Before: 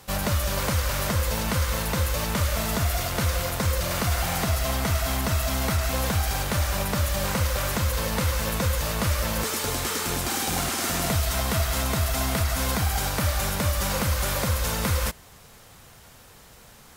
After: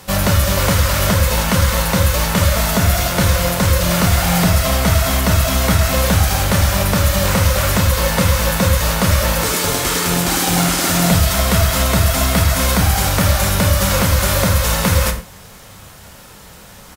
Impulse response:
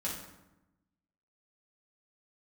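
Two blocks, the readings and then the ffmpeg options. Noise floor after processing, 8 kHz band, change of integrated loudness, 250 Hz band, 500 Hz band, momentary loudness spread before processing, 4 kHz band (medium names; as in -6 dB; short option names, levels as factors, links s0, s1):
-40 dBFS, +10.0 dB, +10.0 dB, +12.0 dB, +10.5 dB, 1 LU, +10.0 dB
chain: -filter_complex "[0:a]asplit=2[s0][s1];[s1]adelay=29,volume=0.251[s2];[s0][s2]amix=inputs=2:normalize=0,asplit=2[s3][s4];[1:a]atrim=start_sample=2205,afade=t=out:st=0.18:d=0.01,atrim=end_sample=8379[s5];[s4][s5]afir=irnorm=-1:irlink=0,volume=0.562[s6];[s3][s6]amix=inputs=2:normalize=0,volume=2.11"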